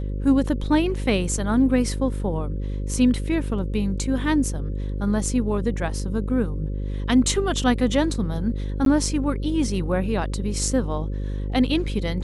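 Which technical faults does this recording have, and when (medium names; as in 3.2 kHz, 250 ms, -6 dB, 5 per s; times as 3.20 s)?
buzz 50 Hz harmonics 11 -27 dBFS
8.85–8.86 s: dropout 12 ms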